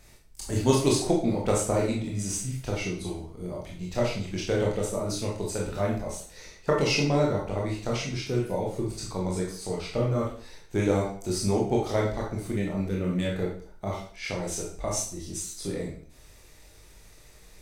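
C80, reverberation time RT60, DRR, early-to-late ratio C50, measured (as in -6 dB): 8.5 dB, 0.50 s, -3.5 dB, 3.5 dB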